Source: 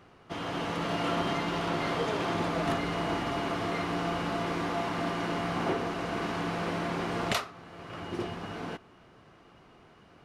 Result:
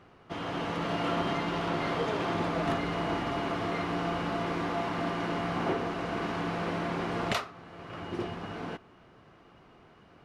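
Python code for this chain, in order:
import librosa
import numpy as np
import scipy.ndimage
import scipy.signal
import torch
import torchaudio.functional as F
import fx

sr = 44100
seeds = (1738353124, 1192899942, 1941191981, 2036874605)

y = fx.high_shelf(x, sr, hz=5800.0, db=-8.0)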